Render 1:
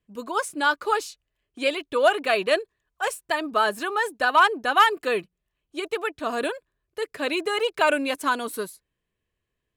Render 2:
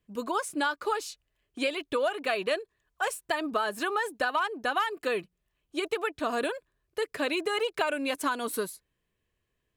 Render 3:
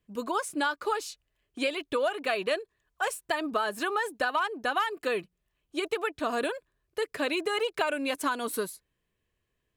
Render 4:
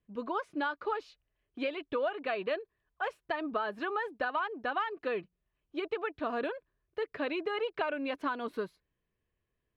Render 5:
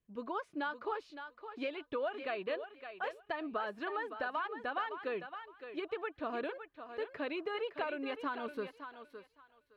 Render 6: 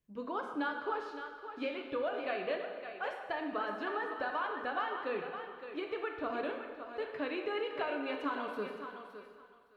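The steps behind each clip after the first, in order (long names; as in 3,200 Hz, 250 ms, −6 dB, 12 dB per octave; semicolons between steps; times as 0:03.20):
downward compressor 6 to 1, threshold −27 dBFS, peak gain reduction 14.5 dB; level +1.5 dB
no processing that can be heard
high-frequency loss of the air 310 metres; level −3 dB
feedback echo with a high-pass in the loop 563 ms, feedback 20%, high-pass 420 Hz, level −8.5 dB; level −4.5 dB
dense smooth reverb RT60 1.6 s, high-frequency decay 0.75×, DRR 2.5 dB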